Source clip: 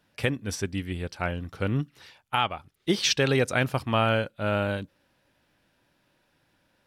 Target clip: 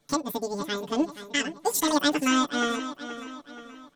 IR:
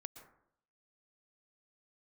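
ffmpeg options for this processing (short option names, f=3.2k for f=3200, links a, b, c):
-filter_complex "[0:a]lowshelf=f=120:g=11.5,flanger=delay=2.8:depth=7.8:regen=-63:speed=0.57:shape=sinusoidal,asetrate=58866,aresample=44100,atempo=0.749154,asplit=2[a][b];[b]adelay=12,volume=-2dB[c];[a][c]amix=inputs=2:normalize=0,asplit=2[d][e];[e]adelay=826,lowpass=f=3.9k:p=1,volume=-11.5dB,asplit=2[f][g];[g]adelay=826,lowpass=f=3.9k:p=1,volume=0.47,asplit=2[h][i];[i]adelay=826,lowpass=f=3.9k:p=1,volume=0.47,asplit=2[j][k];[k]adelay=826,lowpass=f=3.9k:p=1,volume=0.47,asplit=2[l][m];[m]adelay=826,lowpass=f=3.9k:p=1,volume=0.47[n];[f][h][j][l][n]amix=inputs=5:normalize=0[o];[d][o]amix=inputs=2:normalize=0,asetrate=76440,aresample=44100"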